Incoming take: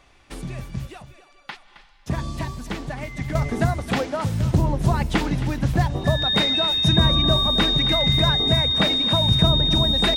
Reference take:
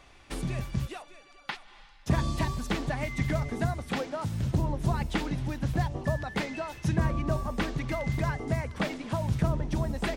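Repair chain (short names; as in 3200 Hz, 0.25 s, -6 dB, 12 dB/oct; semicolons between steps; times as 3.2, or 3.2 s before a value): notch 3700 Hz, Q 30; inverse comb 0.267 s -14.5 dB; gain correction -8 dB, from 3.35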